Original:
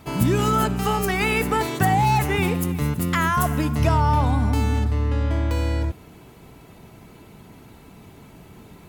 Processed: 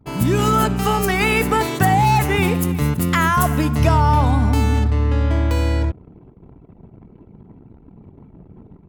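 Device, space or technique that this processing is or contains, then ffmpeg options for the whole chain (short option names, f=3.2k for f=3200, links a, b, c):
voice memo with heavy noise removal: -af "anlmdn=0.158,dynaudnorm=f=120:g=5:m=4.5dB"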